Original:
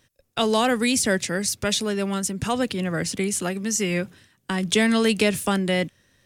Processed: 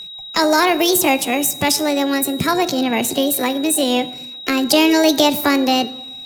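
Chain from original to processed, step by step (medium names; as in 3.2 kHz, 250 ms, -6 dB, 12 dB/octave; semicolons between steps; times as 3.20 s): in parallel at +2 dB: compression, threshold -33 dBFS, peak gain reduction 16.5 dB; on the sum: harmony voices +5 st -15 dB; whistle 2.7 kHz -33 dBFS; pitch shift +6 st; plate-style reverb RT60 0.98 s, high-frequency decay 0.65×, DRR 14 dB; trim +4 dB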